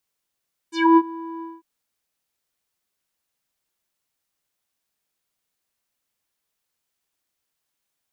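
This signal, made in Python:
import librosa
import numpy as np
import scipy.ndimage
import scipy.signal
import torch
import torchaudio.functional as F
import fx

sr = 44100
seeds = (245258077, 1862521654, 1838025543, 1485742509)

y = fx.sub_voice(sr, note=64, wave='square', cutoff_hz=840.0, q=4.8, env_oct=3.5, env_s=0.15, attack_ms=249.0, decay_s=0.05, sustain_db=-21.5, release_s=0.2, note_s=0.7, slope=12)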